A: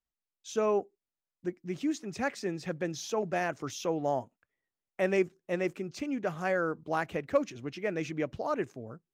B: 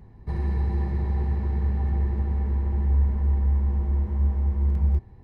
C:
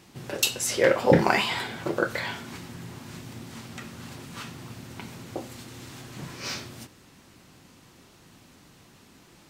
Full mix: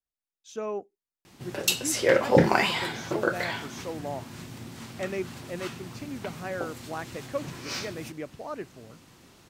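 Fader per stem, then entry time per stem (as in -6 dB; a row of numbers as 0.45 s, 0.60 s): -5.0 dB, mute, -0.5 dB; 0.00 s, mute, 1.25 s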